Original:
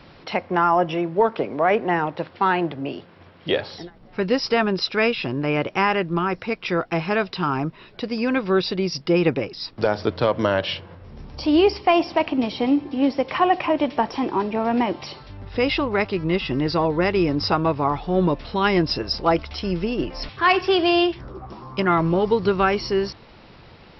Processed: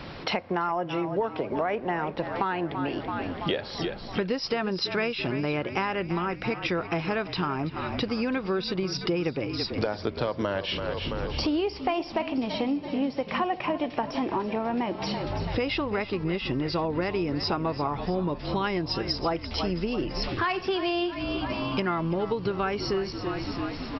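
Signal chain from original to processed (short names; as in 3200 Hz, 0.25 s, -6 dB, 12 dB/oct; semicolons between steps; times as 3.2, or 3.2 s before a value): on a send: frequency-shifting echo 0.333 s, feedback 60%, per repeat -37 Hz, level -14 dB; on the sum: compressor 6:1, threshold -33 dBFS, peak gain reduction 19 dB; gain +7 dB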